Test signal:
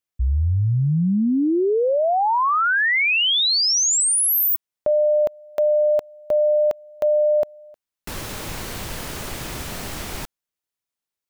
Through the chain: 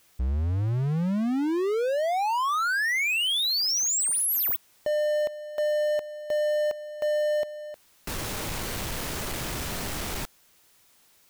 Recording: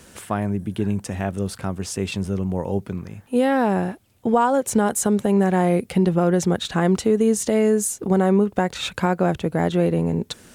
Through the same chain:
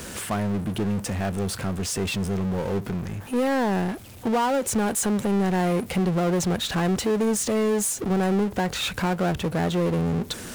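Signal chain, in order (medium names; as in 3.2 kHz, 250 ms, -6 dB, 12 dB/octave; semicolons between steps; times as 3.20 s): power-law waveshaper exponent 0.5; trim -8.5 dB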